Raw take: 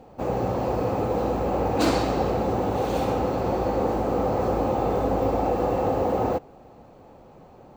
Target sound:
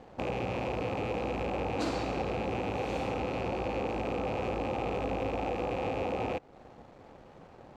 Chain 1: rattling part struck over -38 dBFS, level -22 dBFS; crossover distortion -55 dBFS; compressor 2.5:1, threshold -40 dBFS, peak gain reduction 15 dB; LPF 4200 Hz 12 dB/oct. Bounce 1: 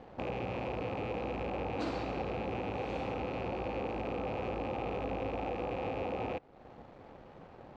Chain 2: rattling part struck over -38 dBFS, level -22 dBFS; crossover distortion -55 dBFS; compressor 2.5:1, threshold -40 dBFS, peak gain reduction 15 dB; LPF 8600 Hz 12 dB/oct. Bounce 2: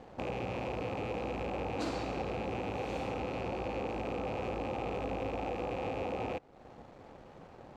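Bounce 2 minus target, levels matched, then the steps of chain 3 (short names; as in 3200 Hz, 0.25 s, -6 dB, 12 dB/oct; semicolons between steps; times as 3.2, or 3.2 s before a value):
compressor: peak gain reduction +3.5 dB
rattling part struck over -38 dBFS, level -22 dBFS; crossover distortion -55 dBFS; compressor 2.5:1, threshold -34 dBFS, peak gain reduction 11.5 dB; LPF 8600 Hz 12 dB/oct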